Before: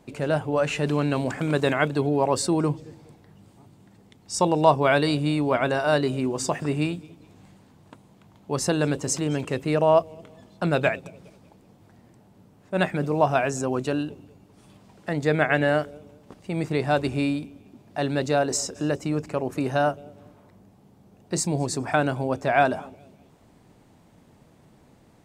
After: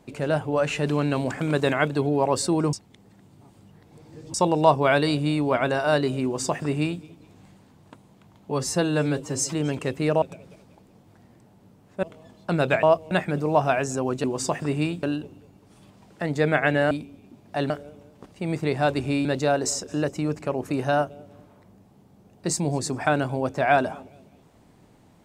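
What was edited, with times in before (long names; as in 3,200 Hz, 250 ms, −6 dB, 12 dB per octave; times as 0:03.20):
0:02.73–0:04.34: reverse
0:06.24–0:07.03: duplicate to 0:13.90
0:08.51–0:09.19: time-stretch 1.5×
0:09.88–0:10.16: swap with 0:10.96–0:12.77
0:17.33–0:18.12: move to 0:15.78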